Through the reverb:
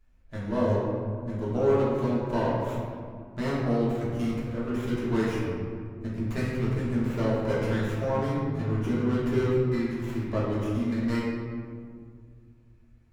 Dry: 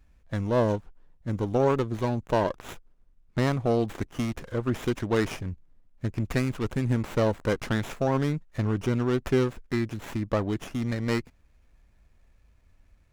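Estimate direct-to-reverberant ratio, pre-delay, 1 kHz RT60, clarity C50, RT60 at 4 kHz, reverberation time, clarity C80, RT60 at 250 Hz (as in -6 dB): -8.5 dB, 3 ms, 1.9 s, -1.0 dB, 1.0 s, 2.0 s, 1.5 dB, 2.9 s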